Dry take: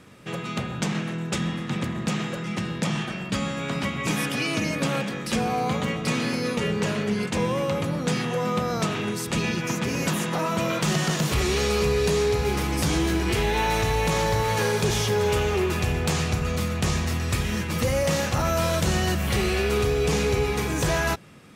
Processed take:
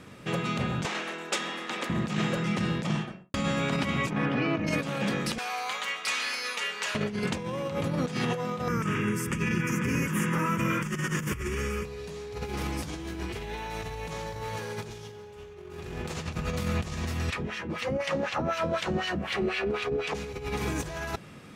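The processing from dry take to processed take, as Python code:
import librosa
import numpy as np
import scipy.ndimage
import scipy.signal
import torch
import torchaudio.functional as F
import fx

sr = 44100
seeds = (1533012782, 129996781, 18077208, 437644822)

y = fx.bessel_highpass(x, sr, hz=490.0, order=4, at=(0.85, 1.9))
y = fx.studio_fade_out(y, sr, start_s=2.74, length_s=0.6)
y = fx.lowpass(y, sr, hz=1700.0, slope=12, at=(4.09, 4.66), fade=0.02)
y = fx.highpass(y, sr, hz=1300.0, slope=12, at=(5.38, 6.95))
y = fx.fixed_phaser(y, sr, hz=1700.0, stages=4, at=(8.68, 11.85))
y = fx.reverb_throw(y, sr, start_s=14.72, length_s=1.44, rt60_s=1.7, drr_db=1.0)
y = fx.filter_lfo_bandpass(y, sr, shape='sine', hz=4.0, low_hz=240.0, high_hz=2900.0, q=1.4, at=(17.29, 20.14), fade=0.02)
y = fx.high_shelf(y, sr, hz=7200.0, db=-4.5)
y = fx.over_compress(y, sr, threshold_db=-28.0, ratio=-0.5)
y = y * librosa.db_to_amplitude(-1.5)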